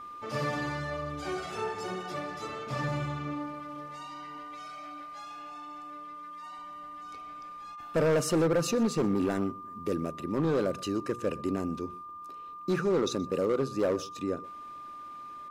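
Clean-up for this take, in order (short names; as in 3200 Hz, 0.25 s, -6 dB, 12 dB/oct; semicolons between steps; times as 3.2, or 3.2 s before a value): clip repair -21.5 dBFS; de-click; notch 1200 Hz, Q 30; inverse comb 0.124 s -22 dB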